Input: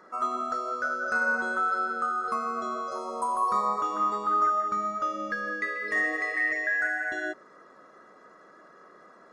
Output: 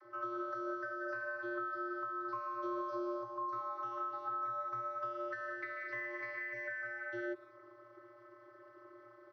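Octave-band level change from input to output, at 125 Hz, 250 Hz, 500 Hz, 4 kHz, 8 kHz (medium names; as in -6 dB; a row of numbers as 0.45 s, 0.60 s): no reading, -5.5 dB, -6.5 dB, under -15 dB, under -25 dB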